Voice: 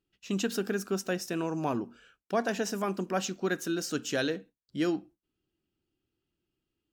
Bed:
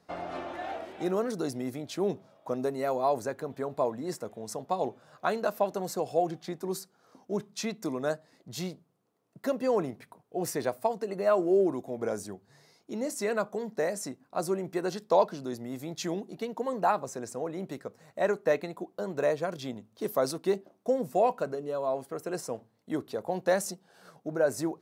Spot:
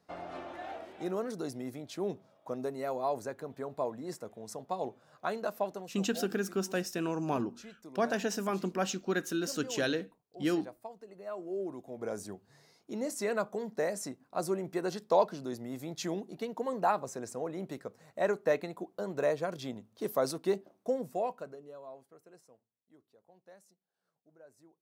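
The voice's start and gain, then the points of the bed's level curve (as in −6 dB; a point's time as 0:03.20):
5.65 s, −1.5 dB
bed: 0:05.71 −5.5 dB
0:05.97 −17 dB
0:11.25 −17 dB
0:12.30 −2.5 dB
0:20.78 −2.5 dB
0:22.84 −30.5 dB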